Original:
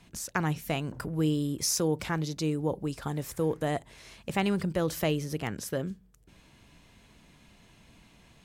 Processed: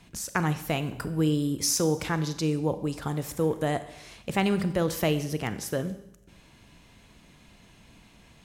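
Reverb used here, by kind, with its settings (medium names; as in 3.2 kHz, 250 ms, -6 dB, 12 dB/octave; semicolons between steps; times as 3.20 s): Schroeder reverb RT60 0.81 s, combs from 31 ms, DRR 11.5 dB; trim +2.5 dB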